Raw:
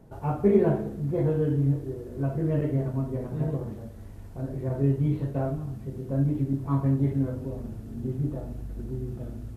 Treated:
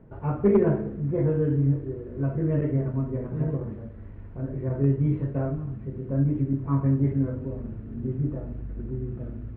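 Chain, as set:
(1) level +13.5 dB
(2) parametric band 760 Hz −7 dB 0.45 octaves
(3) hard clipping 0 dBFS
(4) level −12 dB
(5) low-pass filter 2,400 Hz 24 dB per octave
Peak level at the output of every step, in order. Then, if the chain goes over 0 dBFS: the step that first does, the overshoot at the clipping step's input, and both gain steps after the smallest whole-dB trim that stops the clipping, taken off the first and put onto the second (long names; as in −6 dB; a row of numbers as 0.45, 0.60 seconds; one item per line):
+5.0, +4.5, 0.0, −12.0, −11.5 dBFS
step 1, 4.5 dB
step 1 +8.5 dB, step 4 −7 dB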